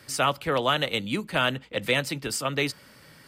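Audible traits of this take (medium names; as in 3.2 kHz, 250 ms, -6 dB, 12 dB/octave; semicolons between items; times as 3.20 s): noise floor -53 dBFS; spectral tilt -3.5 dB/octave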